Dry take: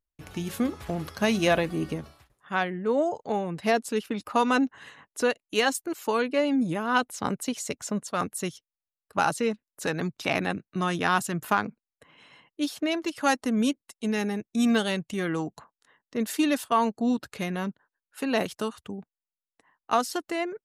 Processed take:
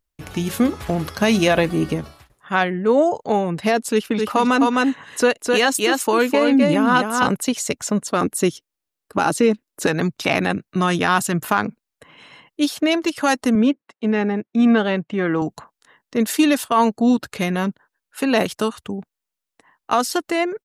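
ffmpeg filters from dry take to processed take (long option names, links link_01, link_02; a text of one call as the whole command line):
ffmpeg -i in.wav -filter_complex "[0:a]asplit=3[link_01][link_02][link_03];[link_01]afade=type=out:start_time=4.17:duration=0.02[link_04];[link_02]aecho=1:1:258:0.631,afade=type=in:start_time=4.17:duration=0.02,afade=type=out:start_time=7.35:duration=0.02[link_05];[link_03]afade=type=in:start_time=7.35:duration=0.02[link_06];[link_04][link_05][link_06]amix=inputs=3:normalize=0,asettb=1/sr,asplit=3[link_07][link_08][link_09];[link_07]atrim=end=8.034[link_10];[link_08]atrim=start=8.03:end=9.87,asetpts=PTS-STARTPTS,afade=type=in:duration=0.004:curve=qsin,afade=type=out:start_time=1.836:duration=0.004:curve=qsin,equalizer=frequency=320:width=1.5:gain=8[link_11];[link_09]atrim=start=9.866[link_12];[link_10][link_11]acrossfade=duration=0.004:curve1=hsin:curve2=qsin[link_13];[link_13][link_12]acrossfade=duration=0.004:curve1=qsin:curve2=hsin,asettb=1/sr,asplit=3[link_14][link_15][link_16];[link_14]atrim=end=13.554[link_17];[link_15]atrim=start=13.55:end=15.42,asetpts=PTS-STARTPTS,afade=type=in:duration=0.004:curve=qsin,afade=type=out:start_time=1.866:duration=0.004:curve=qsin,highpass=160,lowpass=2100[link_18];[link_16]atrim=start=15.416[link_19];[link_17][link_18]acrossfade=duration=0.004:curve1=hsin:curve2=qsin[link_20];[link_20][link_19]acrossfade=duration=0.004:curve1=qsin:curve2=hsin,alimiter=level_in=14.5dB:limit=-1dB:release=50:level=0:latency=1,volume=-5.5dB" out.wav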